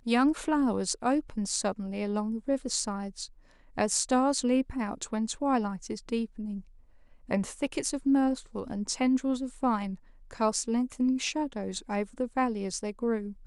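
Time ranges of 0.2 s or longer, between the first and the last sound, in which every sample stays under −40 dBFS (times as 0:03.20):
0:03.26–0:03.77
0:06.61–0:07.29
0:09.95–0:10.31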